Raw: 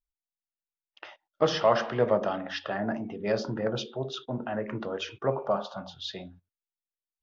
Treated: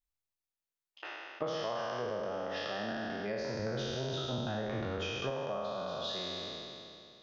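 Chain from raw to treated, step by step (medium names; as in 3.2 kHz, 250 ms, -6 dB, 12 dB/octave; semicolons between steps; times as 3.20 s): spectral sustain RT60 2.52 s; compression 6:1, threshold -30 dBFS, peak gain reduction 15 dB; 3.59–5.30 s: bass shelf 110 Hz +11.5 dB; trim -4 dB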